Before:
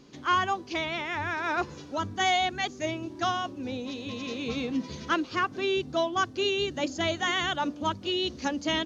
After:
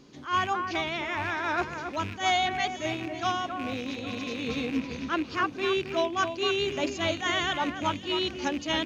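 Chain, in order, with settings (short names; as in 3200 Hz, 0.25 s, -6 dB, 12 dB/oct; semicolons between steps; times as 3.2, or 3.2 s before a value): rattling part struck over -39 dBFS, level -28 dBFS; 4.79–5.3 high shelf 4800 Hz -7 dB; echo with dull and thin repeats by turns 0.271 s, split 2400 Hz, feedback 52%, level -8 dB; attack slew limiter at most 190 dB/s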